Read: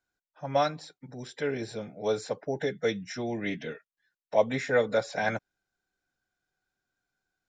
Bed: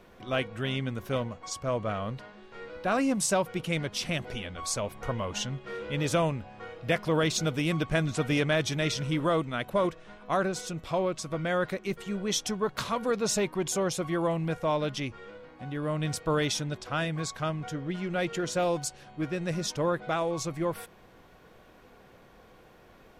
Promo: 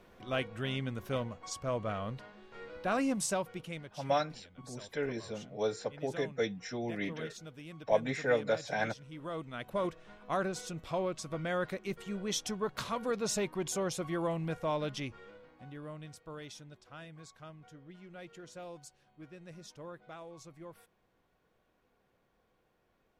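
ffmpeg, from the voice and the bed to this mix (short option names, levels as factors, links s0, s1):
-filter_complex "[0:a]adelay=3550,volume=0.596[s0];[1:a]volume=3.16,afade=t=out:st=3.06:d=0.93:silence=0.16788,afade=t=in:st=9.1:d=0.88:silence=0.188365,afade=t=out:st=15.04:d=1.07:silence=0.211349[s1];[s0][s1]amix=inputs=2:normalize=0"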